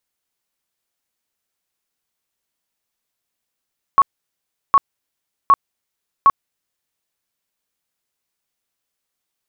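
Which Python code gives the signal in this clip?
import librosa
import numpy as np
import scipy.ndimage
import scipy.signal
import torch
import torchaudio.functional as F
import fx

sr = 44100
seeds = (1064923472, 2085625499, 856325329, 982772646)

y = fx.tone_burst(sr, hz=1110.0, cycles=43, every_s=0.76, bursts=4, level_db=-6.5)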